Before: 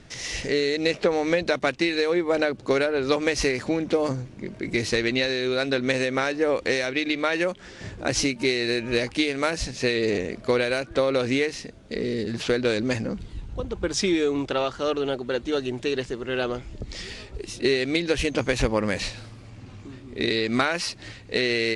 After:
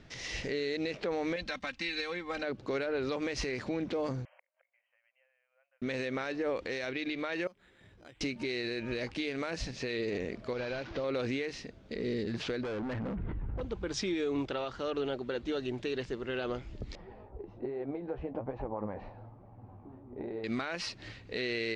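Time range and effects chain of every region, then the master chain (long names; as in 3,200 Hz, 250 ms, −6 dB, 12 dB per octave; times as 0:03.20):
0:01.36–0:02.43: parametric band 410 Hz −14 dB 1.8 octaves + comb filter 3.8 ms, depth 67%
0:04.25–0:05.82: downward compressor 2 to 1, threshold −27 dBFS + gate with flip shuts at −30 dBFS, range −34 dB + linear-phase brick-wall band-pass 510–3,200 Hz
0:07.47–0:08.21: first-order pre-emphasis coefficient 0.8 + downward compressor 2 to 1, threshold −48 dBFS + bad sample-rate conversion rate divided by 8×, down filtered, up hold
0:10.53–0:11.04: linear delta modulator 32 kbit/s, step −33.5 dBFS + downward compressor 2.5 to 1, threshold −28 dBFS
0:12.63–0:13.61: low-pass filter 1,900 Hz 24 dB per octave + gain into a clipping stage and back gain 29 dB + envelope flattener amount 100%
0:16.95–0:20.44: downward compressor 4 to 1, threshold −24 dBFS + flanger 1.2 Hz, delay 4.8 ms, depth 8.9 ms, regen +50% + low-pass with resonance 830 Hz, resonance Q 3.4
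whole clip: low-pass filter 4,900 Hz 12 dB per octave; brickwall limiter −19 dBFS; level −6 dB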